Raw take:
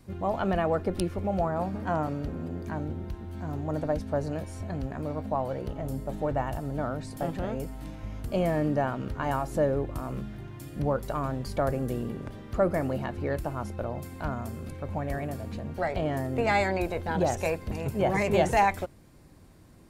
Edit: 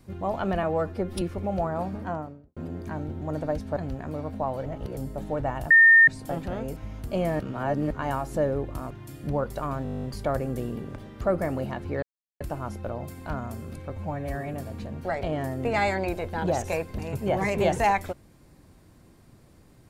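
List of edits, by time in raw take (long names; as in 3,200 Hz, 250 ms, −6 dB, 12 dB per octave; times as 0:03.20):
0:00.63–0:01.02: time-stretch 1.5×
0:01.69–0:02.37: fade out and dull
0:03.02–0:03.62: remove
0:04.17–0:04.68: remove
0:05.57–0:05.88: reverse
0:06.62–0:06.99: beep over 1,820 Hz −11 dBFS
0:07.68–0:07.97: remove
0:08.60–0:09.11: reverse
0:10.11–0:10.43: remove
0:11.36: stutter 0.02 s, 11 plays
0:13.35: splice in silence 0.38 s
0:14.84–0:15.27: time-stretch 1.5×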